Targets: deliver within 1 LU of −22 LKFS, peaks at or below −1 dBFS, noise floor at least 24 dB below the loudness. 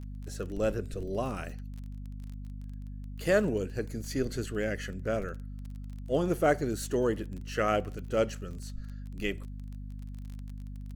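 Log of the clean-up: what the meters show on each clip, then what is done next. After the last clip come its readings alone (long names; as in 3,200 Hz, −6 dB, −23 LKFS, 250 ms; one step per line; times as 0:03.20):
crackle rate 25 per second; mains hum 50 Hz; hum harmonics up to 250 Hz; level of the hum −38 dBFS; integrated loudness −32.0 LKFS; sample peak −12.5 dBFS; target loudness −22.0 LKFS
→ click removal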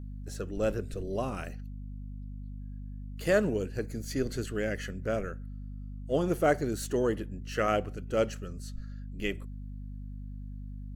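crackle rate 0.091 per second; mains hum 50 Hz; hum harmonics up to 250 Hz; level of the hum −38 dBFS
→ mains-hum notches 50/100/150/200/250 Hz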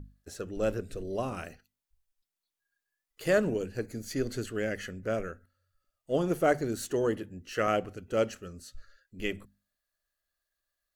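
mains hum none found; integrated loudness −32.0 LKFS; sample peak −12.5 dBFS; target loudness −22.0 LKFS
→ level +10 dB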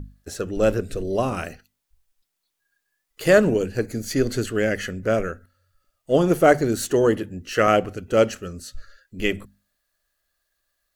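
integrated loudness −22.0 LKFS; sample peak −2.5 dBFS; background noise floor −78 dBFS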